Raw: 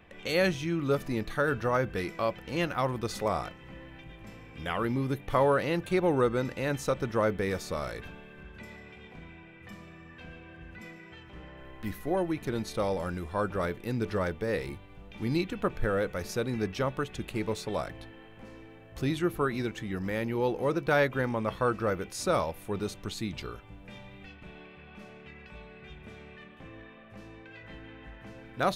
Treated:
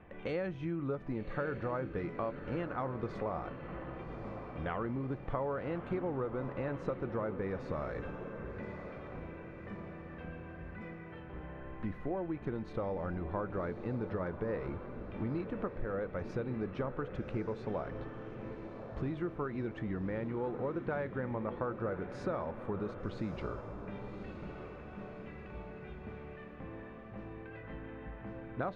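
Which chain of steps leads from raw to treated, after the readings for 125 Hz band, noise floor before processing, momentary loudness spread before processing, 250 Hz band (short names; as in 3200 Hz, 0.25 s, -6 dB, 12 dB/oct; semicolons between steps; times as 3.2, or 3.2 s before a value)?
-5.0 dB, -51 dBFS, 21 LU, -5.5 dB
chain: LPF 1500 Hz 12 dB/oct; compressor 6:1, threshold -35 dBFS, peak gain reduction 13.5 dB; diffused feedback echo 1.152 s, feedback 48%, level -9 dB; gain +1.5 dB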